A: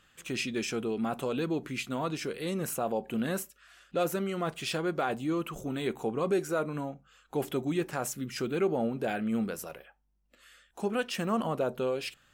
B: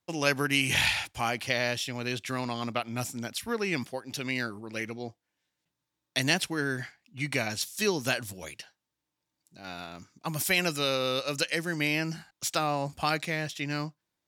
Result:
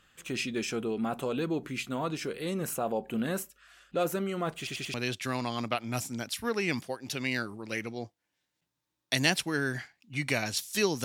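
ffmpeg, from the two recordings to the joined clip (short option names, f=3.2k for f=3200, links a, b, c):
-filter_complex "[0:a]apad=whole_dur=11.04,atrim=end=11.04,asplit=4[a][b][c][d];[a]atrim=end=4.672[e];[b]atrim=start=4.578:end=4.672[f];[c]atrim=start=4.578:end=4.672[g];[d]atrim=start=4.578:end=4.672[h];[1:a]atrim=start=1.978:end=8.08[i];[e][f]acrossfade=d=0.004:c1=hsin:c2=hsin[j];[j][g]acrossfade=d=0.004:c1=hsin:c2=hsin[k];[k][h]acrossfade=d=0.004:c1=hsin:c2=hsin[l];[l][i]acrossfade=d=0.004:c1=hsin:c2=hsin"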